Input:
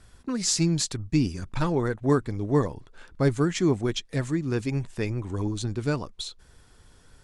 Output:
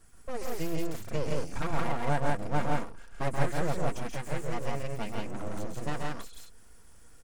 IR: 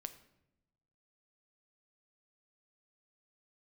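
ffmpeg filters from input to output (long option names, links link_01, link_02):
-filter_complex "[0:a]equalizer=frequency=3800:width=2.5:gain=-13.5,acrossover=split=2800[link_01][link_02];[link_02]acompressor=threshold=-46dB:ratio=4:attack=1:release=60[link_03];[link_01][link_03]amix=inputs=2:normalize=0,highshelf=frequency=5700:gain=8.5,aecho=1:1:4.3:0.61,aeval=exprs='abs(val(0))':channel_layout=same,aecho=1:1:131.2|169.1:0.562|0.891,volume=-6dB"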